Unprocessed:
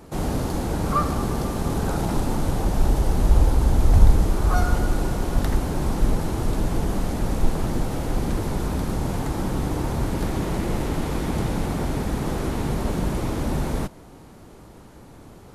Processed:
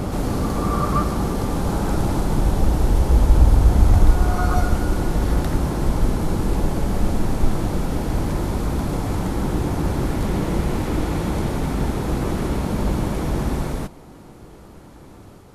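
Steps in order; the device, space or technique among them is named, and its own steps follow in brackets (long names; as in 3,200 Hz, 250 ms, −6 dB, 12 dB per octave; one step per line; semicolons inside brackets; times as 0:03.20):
reverse reverb (reversed playback; convolution reverb RT60 1.9 s, pre-delay 114 ms, DRR 0 dB; reversed playback)
level −1 dB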